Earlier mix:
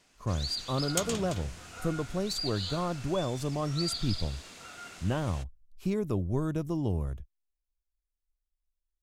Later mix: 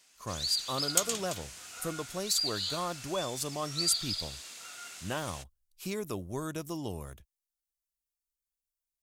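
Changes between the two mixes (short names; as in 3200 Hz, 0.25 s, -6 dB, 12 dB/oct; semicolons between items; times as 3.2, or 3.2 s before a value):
first sound -4.0 dB; second sound -5.0 dB; master: add tilt +3.5 dB/oct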